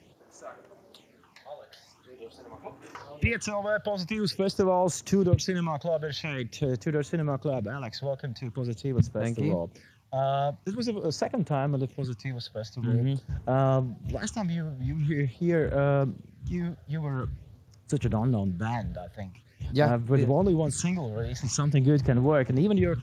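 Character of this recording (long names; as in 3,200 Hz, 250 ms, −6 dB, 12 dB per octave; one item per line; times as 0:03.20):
phaser sweep stages 8, 0.46 Hz, lowest notch 300–4,600 Hz
a quantiser's noise floor 12 bits, dither triangular
Speex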